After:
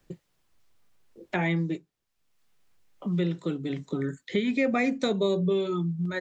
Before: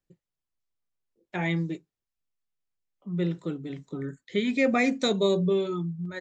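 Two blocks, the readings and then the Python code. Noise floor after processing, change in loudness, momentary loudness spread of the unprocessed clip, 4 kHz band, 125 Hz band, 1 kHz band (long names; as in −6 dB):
−77 dBFS, −0.5 dB, 14 LU, −3.0 dB, +1.5 dB, −0.5 dB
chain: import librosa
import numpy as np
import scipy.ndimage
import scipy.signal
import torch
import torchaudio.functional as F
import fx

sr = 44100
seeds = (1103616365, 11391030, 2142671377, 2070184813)

y = fx.high_shelf(x, sr, hz=5000.0, db=-6.5)
y = fx.band_squash(y, sr, depth_pct=70)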